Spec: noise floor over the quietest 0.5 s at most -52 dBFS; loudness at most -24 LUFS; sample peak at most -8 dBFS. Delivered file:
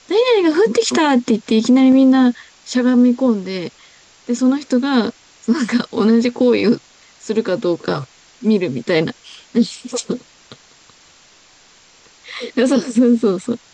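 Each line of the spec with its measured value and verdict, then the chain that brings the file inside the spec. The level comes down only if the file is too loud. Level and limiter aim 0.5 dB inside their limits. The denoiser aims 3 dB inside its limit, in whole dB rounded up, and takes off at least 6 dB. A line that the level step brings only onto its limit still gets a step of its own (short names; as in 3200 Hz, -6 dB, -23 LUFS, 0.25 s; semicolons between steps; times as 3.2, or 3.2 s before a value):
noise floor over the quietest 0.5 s -49 dBFS: fail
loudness -16.5 LUFS: fail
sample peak -5.0 dBFS: fail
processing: gain -8 dB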